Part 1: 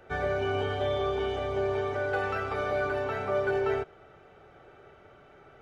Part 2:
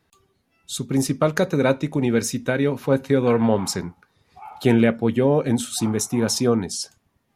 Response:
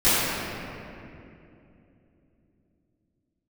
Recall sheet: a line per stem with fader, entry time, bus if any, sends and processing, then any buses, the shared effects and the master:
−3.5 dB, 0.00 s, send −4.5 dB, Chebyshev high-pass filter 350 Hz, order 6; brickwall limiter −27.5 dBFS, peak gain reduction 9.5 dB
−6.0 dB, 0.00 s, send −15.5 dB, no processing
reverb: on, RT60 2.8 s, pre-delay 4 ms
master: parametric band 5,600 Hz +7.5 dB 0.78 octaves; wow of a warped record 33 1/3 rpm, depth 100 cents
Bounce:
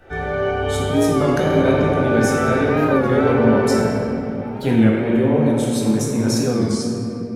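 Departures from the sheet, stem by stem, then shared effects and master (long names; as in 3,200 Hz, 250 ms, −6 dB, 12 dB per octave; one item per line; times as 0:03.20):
stem 1: missing Chebyshev high-pass filter 350 Hz, order 6
master: missing parametric band 5,600 Hz +7.5 dB 0.78 octaves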